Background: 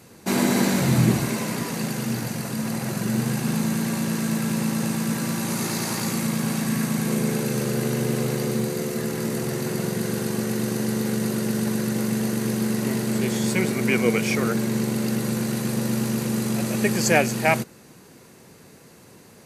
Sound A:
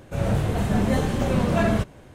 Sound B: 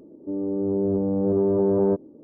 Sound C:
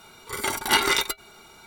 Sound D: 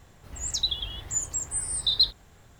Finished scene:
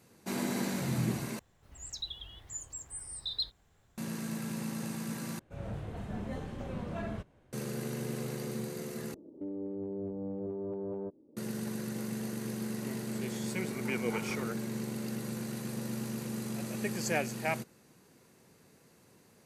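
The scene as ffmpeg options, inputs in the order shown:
-filter_complex "[0:a]volume=-13dB[a];[1:a]highshelf=f=5k:g=-8[b];[2:a]acompressor=threshold=-28dB:ratio=6:attack=0.65:release=604:knee=1:detection=rms[c];[3:a]lowpass=1.2k[d];[a]asplit=4[e][f][g][h];[e]atrim=end=1.394[i];[4:a]atrim=end=2.59,asetpts=PTS-STARTPTS,volume=-13dB[j];[f]atrim=start=3.976:end=5.394[k];[b]atrim=end=2.14,asetpts=PTS-STARTPTS,volume=-17dB[l];[g]atrim=start=7.526:end=9.144[m];[c]atrim=end=2.23,asetpts=PTS-STARTPTS,volume=-5.5dB[n];[h]atrim=start=11.366[o];[d]atrim=end=1.66,asetpts=PTS-STARTPTS,volume=-18dB,afade=t=in:d=0.004:c=hsin,afade=t=out:st=1.656:d=0.004:c=hsin,adelay=13410[p];[i][j]acrossfade=d=0.004:c1=hsin:c2=hsin[q];[q][k]acrossfade=d=0.004:c1=hsin:c2=hsin[r];[r][l]acrossfade=d=0.004:c1=hsin:c2=hsin[s];[s][m]acrossfade=d=0.004:c1=hsin:c2=hsin[t];[t][n]acrossfade=d=0.004:c1=hsin:c2=hsin[u];[u][o]acrossfade=d=0.004:c1=hsin:c2=hsin[v];[v][p]amix=inputs=2:normalize=0"

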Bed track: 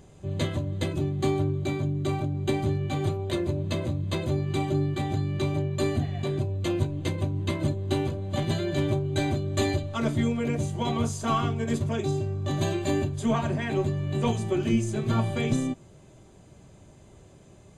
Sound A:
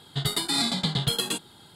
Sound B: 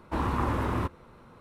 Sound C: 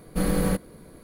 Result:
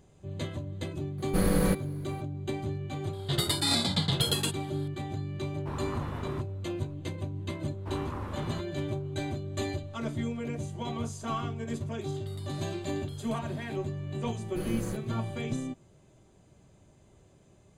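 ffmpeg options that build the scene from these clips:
-filter_complex "[3:a]asplit=2[a][b];[1:a]asplit=2[c][d];[2:a]asplit=2[e][f];[0:a]volume=-7.5dB[g];[d]acompressor=threshold=-47dB:ratio=6:attack=3.2:release=140:knee=1:detection=peak[h];[a]atrim=end=1.03,asetpts=PTS-STARTPTS,volume=-1.5dB,afade=t=in:d=0.004:c=hsin,afade=t=out:st=1.026:d=0.004:c=hsin,adelay=1180[i];[c]atrim=end=1.75,asetpts=PTS-STARTPTS,volume=-2dB,afade=t=in:d=0.004:c=hsin,afade=t=out:st=1.746:d=0.004:c=hsin,adelay=138033S[j];[e]atrim=end=1.4,asetpts=PTS-STARTPTS,volume=-10dB,afade=t=in:d=0.004:c=hsin,afade=t=out:st=1.396:d=0.004:c=hsin,adelay=5540[k];[f]atrim=end=1.4,asetpts=PTS-STARTPTS,volume=-11dB,afade=t=in:d=0.004:c=hsin,afade=t=out:st=1.396:d=0.004:c=hsin,adelay=7740[l];[h]atrim=end=1.75,asetpts=PTS-STARTPTS,volume=-3.5dB,afade=t=in:d=0.004:c=hsin,afade=t=out:st=1.746:d=0.004:c=hsin,adelay=12010[m];[b]atrim=end=1.03,asetpts=PTS-STARTPTS,volume=-13dB,afade=t=in:d=0.004:c=hsin,afade=t=out:st=1.026:d=0.004:c=hsin,adelay=14400[n];[g][i][j][k][l][m][n]amix=inputs=7:normalize=0"

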